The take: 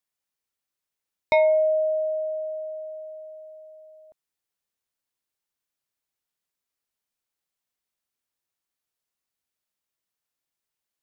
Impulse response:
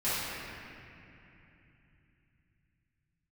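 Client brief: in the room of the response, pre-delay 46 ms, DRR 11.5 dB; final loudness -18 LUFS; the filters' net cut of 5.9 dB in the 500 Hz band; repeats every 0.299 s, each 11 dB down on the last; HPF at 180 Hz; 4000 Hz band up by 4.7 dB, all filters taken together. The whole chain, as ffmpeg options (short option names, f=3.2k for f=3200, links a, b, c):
-filter_complex "[0:a]highpass=180,equalizer=f=500:t=o:g=-8.5,equalizer=f=4k:t=o:g=5,aecho=1:1:299|598|897:0.282|0.0789|0.0221,asplit=2[a][b];[1:a]atrim=start_sample=2205,adelay=46[c];[b][c]afir=irnorm=-1:irlink=0,volume=-22.5dB[d];[a][d]amix=inputs=2:normalize=0,volume=9dB"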